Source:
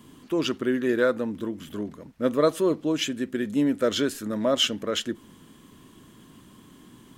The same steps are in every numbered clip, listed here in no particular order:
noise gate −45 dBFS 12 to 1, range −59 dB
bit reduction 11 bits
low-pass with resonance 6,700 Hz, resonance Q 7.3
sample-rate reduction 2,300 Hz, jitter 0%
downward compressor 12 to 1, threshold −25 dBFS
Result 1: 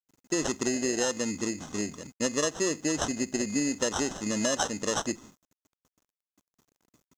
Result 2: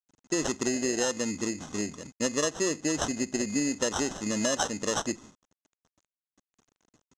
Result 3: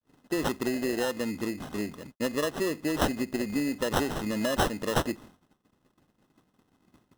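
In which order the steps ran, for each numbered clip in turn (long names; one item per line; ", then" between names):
sample-rate reduction, then noise gate, then downward compressor, then low-pass with resonance, then bit reduction
sample-rate reduction, then noise gate, then bit reduction, then downward compressor, then low-pass with resonance
downward compressor, then low-pass with resonance, then bit reduction, then noise gate, then sample-rate reduction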